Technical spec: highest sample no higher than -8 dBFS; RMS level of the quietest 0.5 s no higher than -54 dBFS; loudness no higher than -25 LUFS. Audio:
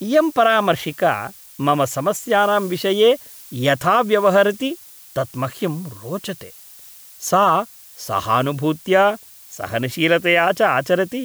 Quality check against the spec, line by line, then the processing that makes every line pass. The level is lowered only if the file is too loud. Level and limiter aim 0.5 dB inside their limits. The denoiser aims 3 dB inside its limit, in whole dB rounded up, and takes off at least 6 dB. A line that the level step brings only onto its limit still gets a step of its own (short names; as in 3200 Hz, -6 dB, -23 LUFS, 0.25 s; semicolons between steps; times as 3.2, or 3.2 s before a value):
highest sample -4.5 dBFS: fail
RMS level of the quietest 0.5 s -43 dBFS: fail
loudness -18.5 LUFS: fail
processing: denoiser 7 dB, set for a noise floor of -43 dBFS; gain -7 dB